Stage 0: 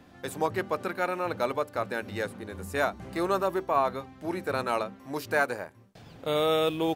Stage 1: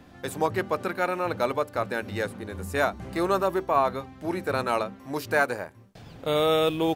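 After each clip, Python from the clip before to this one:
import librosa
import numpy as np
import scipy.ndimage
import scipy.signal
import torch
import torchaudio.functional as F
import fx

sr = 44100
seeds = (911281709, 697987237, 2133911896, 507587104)

y = fx.low_shelf(x, sr, hz=79.0, db=6.0)
y = F.gain(torch.from_numpy(y), 2.5).numpy()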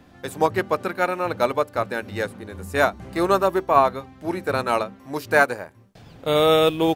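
y = fx.upward_expand(x, sr, threshold_db=-33.0, expansion=1.5)
y = F.gain(torch.from_numpy(y), 7.0).numpy()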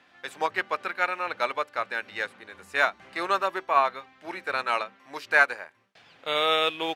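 y = fx.bandpass_q(x, sr, hz=2300.0, q=0.98)
y = F.gain(torch.from_numpy(y), 2.0).numpy()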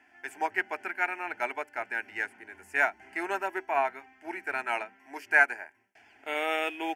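y = fx.fixed_phaser(x, sr, hz=780.0, stages=8)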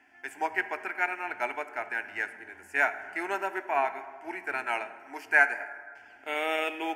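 y = fx.rev_plate(x, sr, seeds[0], rt60_s=1.9, hf_ratio=0.45, predelay_ms=0, drr_db=11.0)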